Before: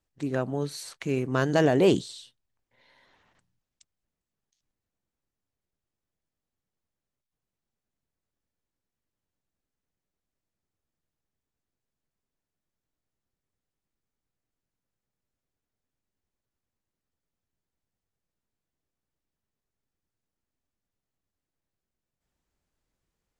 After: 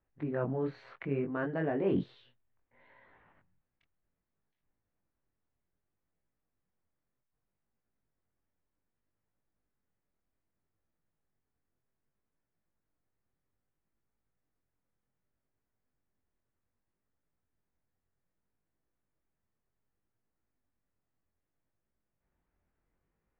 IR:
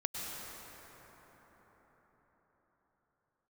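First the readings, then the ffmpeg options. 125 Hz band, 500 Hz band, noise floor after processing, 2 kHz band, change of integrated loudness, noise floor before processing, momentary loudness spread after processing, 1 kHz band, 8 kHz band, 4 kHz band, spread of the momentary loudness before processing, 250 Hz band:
-8.0 dB, -8.5 dB, under -85 dBFS, -9.0 dB, -8.5 dB, under -85 dBFS, 8 LU, -9.5 dB, under -30 dB, -21.0 dB, 15 LU, -7.0 dB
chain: -af "lowpass=f=2200:w=0.5412,lowpass=f=2200:w=1.3066,areverse,acompressor=threshold=0.0355:ratio=10,areverse,flanger=delay=18:depth=6.2:speed=0.64,volume=1.68"

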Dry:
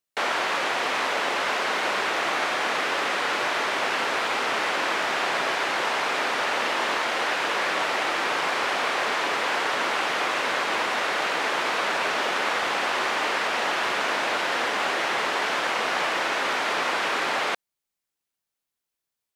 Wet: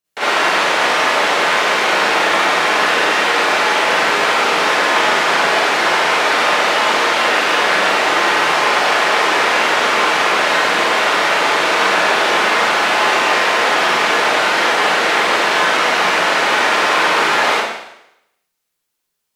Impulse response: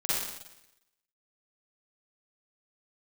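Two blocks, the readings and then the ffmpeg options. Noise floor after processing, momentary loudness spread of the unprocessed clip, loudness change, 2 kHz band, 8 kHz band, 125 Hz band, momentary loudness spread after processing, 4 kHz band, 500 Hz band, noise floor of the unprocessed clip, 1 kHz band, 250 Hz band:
-74 dBFS, 0 LU, +11.0 dB, +11.0 dB, +11.0 dB, +11.5 dB, 1 LU, +11.0 dB, +11.0 dB, -85 dBFS, +11.0 dB, +10.5 dB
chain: -filter_complex "[1:a]atrim=start_sample=2205,asetrate=48510,aresample=44100[s0];[0:a][s0]afir=irnorm=-1:irlink=0,volume=1.41"

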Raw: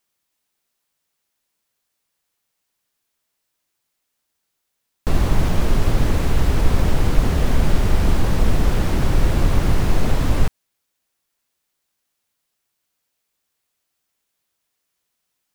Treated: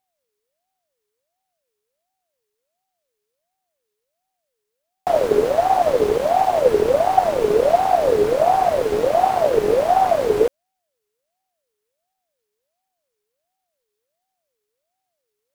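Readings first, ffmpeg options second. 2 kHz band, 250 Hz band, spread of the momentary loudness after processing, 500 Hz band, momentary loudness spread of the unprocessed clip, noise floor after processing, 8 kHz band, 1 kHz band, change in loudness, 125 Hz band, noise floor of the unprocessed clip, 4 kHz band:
-1.5 dB, -5.0 dB, 3 LU, +13.5 dB, 2 LU, -79 dBFS, -3.0 dB, +13.5 dB, +3.5 dB, -17.5 dB, -76 dBFS, -3.0 dB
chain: -af "aeval=exprs='abs(val(0))':c=same,aeval=exprs='val(0)*sin(2*PI*590*n/s+590*0.3/1.4*sin(2*PI*1.4*n/s))':c=same"

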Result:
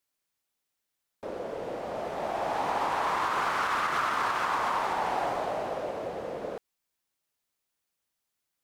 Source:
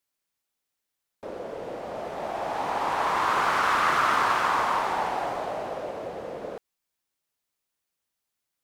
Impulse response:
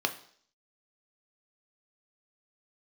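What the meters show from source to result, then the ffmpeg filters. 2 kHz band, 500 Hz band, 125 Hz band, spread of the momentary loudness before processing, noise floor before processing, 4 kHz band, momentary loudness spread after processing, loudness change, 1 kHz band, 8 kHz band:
-4.5 dB, -1.5 dB, -2.0 dB, 15 LU, -84 dBFS, -4.0 dB, 10 LU, -4.0 dB, -3.5 dB, -4.0 dB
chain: -af "alimiter=limit=0.112:level=0:latency=1:release=145"

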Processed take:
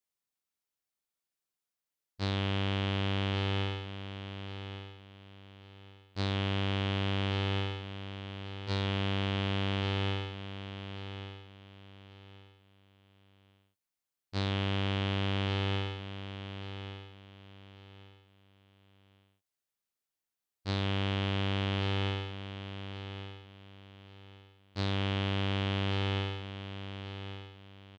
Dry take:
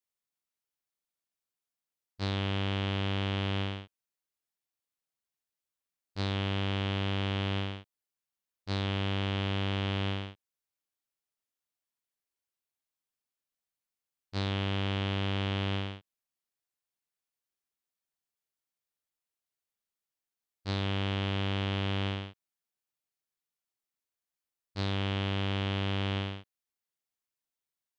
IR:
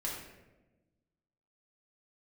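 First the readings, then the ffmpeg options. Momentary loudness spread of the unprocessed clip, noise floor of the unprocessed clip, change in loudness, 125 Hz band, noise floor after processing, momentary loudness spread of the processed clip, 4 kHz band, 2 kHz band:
8 LU, under -85 dBFS, -1.5 dB, +0.5 dB, under -85 dBFS, 22 LU, +0.5 dB, +0.5 dB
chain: -af "aecho=1:1:1135|2270|3405:0.299|0.0806|0.0218"

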